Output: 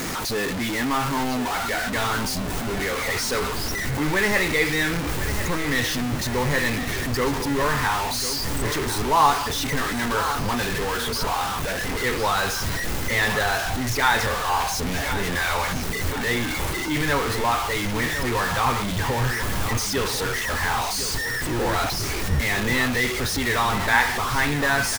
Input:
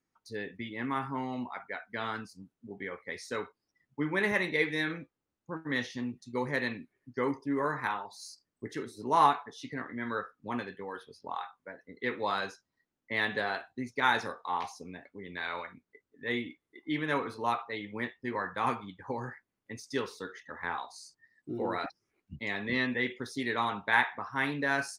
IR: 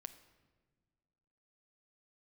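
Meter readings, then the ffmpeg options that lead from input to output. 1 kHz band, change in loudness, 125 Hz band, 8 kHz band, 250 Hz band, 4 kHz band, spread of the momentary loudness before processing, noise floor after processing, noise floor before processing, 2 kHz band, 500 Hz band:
+9.0 dB, +10.5 dB, +17.0 dB, +24.0 dB, +9.0 dB, +15.5 dB, 17 LU, −27 dBFS, below −85 dBFS, +10.0 dB, +9.5 dB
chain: -filter_complex "[0:a]aeval=exprs='val(0)+0.5*0.0501*sgn(val(0))':channel_layout=same,asubboost=boost=5.5:cutoff=94,asplit=2[link_01][link_02];[link_02]aecho=0:1:1047|2094|3141|4188|5235|6282:0.282|0.152|0.0822|0.0444|0.024|0.0129[link_03];[link_01][link_03]amix=inputs=2:normalize=0,volume=4.5dB"

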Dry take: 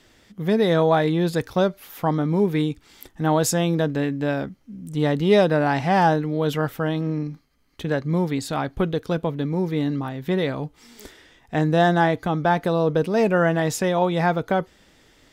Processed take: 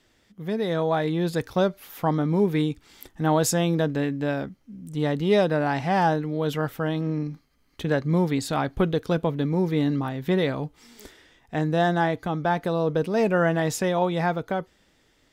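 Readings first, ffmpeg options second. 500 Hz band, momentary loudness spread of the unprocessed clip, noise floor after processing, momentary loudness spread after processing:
−3.0 dB, 10 LU, −64 dBFS, 9 LU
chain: -af "dynaudnorm=framelen=130:gausssize=17:maxgain=11.5dB,volume=-8dB"

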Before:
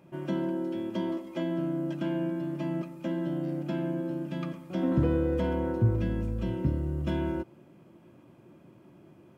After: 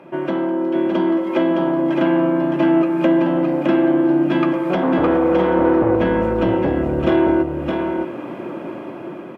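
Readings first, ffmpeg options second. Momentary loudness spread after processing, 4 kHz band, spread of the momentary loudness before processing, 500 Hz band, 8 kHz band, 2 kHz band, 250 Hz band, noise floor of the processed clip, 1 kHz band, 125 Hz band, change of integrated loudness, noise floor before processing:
12 LU, +13.0 dB, 7 LU, +16.0 dB, can't be measured, +17.5 dB, +14.0 dB, −32 dBFS, +19.0 dB, +3.0 dB, +13.0 dB, −57 dBFS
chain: -filter_complex "[0:a]asplit=2[link_01][link_02];[link_02]aeval=exprs='0.211*sin(PI/2*3.55*val(0)/0.211)':channel_layout=same,volume=-8dB[link_03];[link_01][link_03]amix=inputs=2:normalize=0,dynaudnorm=framelen=510:gausssize=5:maxgain=11.5dB,acrossover=split=260 3000:gain=0.126 1 0.141[link_04][link_05][link_06];[link_04][link_05][link_06]amix=inputs=3:normalize=0,acompressor=threshold=-27dB:ratio=3,aecho=1:1:614:0.631,aresample=32000,aresample=44100,volume=8dB"

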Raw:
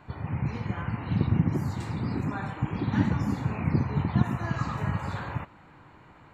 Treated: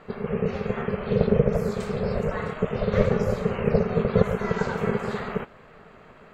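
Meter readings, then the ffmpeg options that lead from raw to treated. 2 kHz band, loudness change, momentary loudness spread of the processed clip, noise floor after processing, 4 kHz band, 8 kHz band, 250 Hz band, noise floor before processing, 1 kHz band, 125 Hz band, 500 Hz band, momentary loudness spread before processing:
+4.0 dB, +3.5 dB, 7 LU, −50 dBFS, +4.0 dB, can't be measured, +2.0 dB, −53 dBFS, +2.5 dB, −1.0 dB, +17.0 dB, 7 LU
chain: -af "aeval=exprs='val(0)*sin(2*PI*310*n/s)':channel_layout=same,volume=6.5dB"

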